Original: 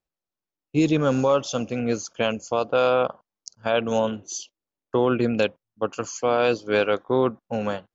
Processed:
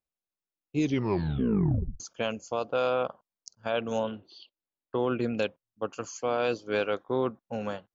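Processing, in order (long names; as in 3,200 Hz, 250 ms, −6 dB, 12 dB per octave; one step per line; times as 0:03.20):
0:00.78: tape stop 1.22 s
0:04.03–0:05.00: Chebyshev low-pass filter 4,500 Hz, order 6
level −7 dB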